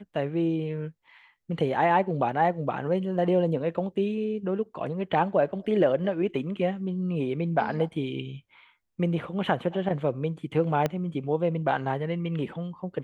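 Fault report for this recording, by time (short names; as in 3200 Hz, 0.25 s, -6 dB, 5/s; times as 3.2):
10.86 pop -13 dBFS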